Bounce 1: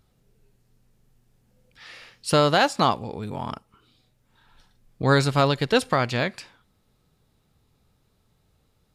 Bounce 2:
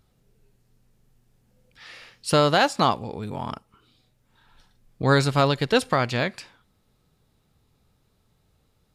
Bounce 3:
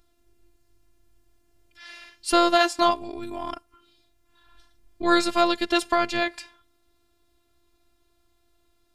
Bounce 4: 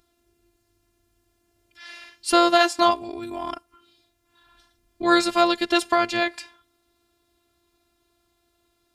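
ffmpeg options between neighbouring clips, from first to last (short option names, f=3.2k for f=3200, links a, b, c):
-af anull
-af "afftfilt=real='hypot(re,im)*cos(PI*b)':imag='0':win_size=512:overlap=0.75,volume=4dB"
-af "highpass=f=81:p=1,volume=2dB"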